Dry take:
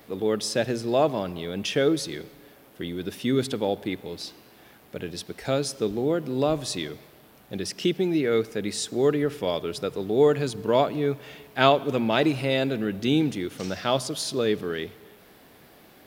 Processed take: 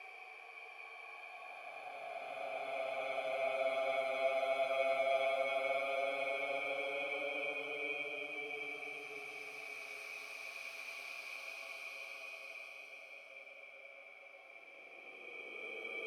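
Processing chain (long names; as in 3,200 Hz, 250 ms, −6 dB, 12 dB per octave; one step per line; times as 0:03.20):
samples in bit-reversed order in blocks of 16 samples
high-pass filter 570 Hz 6 dB per octave
parametric band 2,300 Hz +14 dB 0.59 octaves
on a send: feedback echo with a band-pass in the loop 392 ms, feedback 78%, band-pass 2,100 Hz, level −7.5 dB
on the sum: extreme stretch with random phases 40×, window 0.10 s, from 0:05.41
formant filter a
level −1 dB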